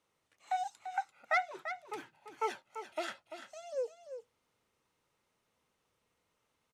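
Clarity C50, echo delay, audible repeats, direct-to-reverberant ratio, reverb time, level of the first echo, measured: no reverb audible, 341 ms, 1, no reverb audible, no reverb audible, −10.0 dB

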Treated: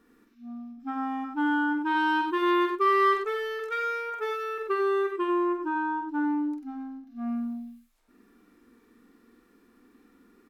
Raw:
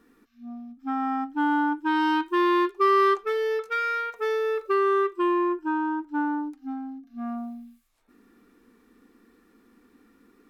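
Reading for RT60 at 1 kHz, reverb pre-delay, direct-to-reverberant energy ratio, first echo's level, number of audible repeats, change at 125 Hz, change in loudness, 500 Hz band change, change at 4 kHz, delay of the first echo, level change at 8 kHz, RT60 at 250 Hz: no reverb audible, no reverb audible, no reverb audible, −5.5 dB, 2, can't be measured, −2.5 dB, −3.5 dB, −1.5 dB, 47 ms, can't be measured, no reverb audible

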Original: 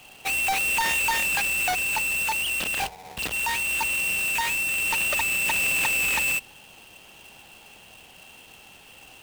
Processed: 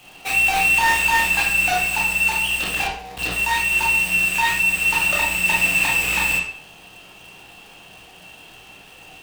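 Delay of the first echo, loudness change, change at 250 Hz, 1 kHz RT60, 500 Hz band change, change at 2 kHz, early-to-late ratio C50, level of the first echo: no echo audible, +5.5 dB, +8.0 dB, 0.55 s, +5.5 dB, +6.5 dB, 3.5 dB, no echo audible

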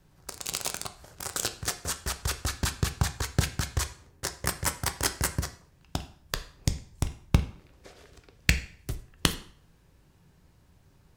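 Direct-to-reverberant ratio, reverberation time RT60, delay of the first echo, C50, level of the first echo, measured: 8.0 dB, 0.55 s, no echo audible, 13.5 dB, no echo audible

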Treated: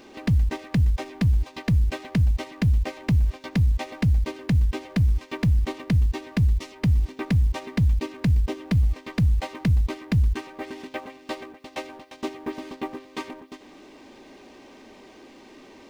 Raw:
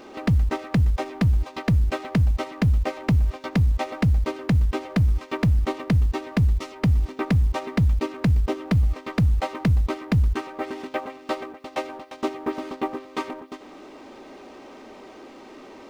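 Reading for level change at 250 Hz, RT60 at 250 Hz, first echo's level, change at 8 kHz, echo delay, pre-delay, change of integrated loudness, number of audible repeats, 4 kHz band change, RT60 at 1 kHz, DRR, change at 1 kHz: −2.0 dB, no reverb audible, no echo audible, can't be measured, no echo audible, no reverb audible, −0.5 dB, no echo audible, −1.0 dB, no reverb audible, no reverb audible, −6.5 dB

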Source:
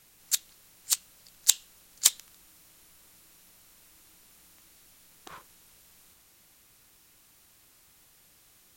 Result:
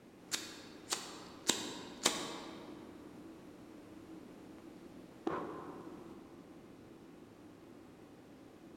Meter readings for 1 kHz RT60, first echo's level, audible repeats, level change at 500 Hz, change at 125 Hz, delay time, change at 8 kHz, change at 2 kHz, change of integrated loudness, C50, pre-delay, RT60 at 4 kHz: 2.5 s, no echo audible, no echo audible, +15.5 dB, can't be measured, no echo audible, −13.5 dB, −0.5 dB, −14.5 dB, 5.0 dB, 4 ms, 1.4 s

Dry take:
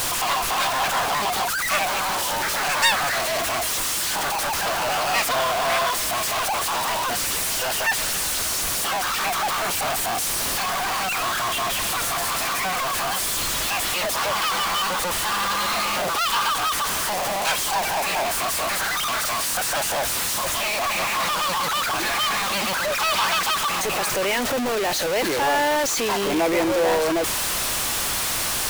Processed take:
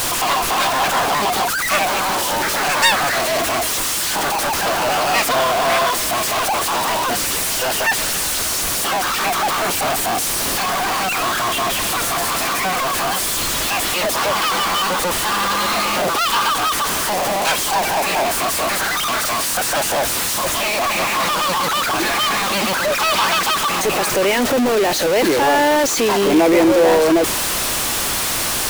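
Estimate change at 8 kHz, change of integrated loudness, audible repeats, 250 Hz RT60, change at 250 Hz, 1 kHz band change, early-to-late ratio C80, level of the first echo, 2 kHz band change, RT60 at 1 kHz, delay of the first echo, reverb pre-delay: +4.0 dB, +5.0 dB, no echo audible, no reverb audible, +9.5 dB, +5.0 dB, no reverb audible, no echo audible, +4.0 dB, no reverb audible, no echo audible, no reverb audible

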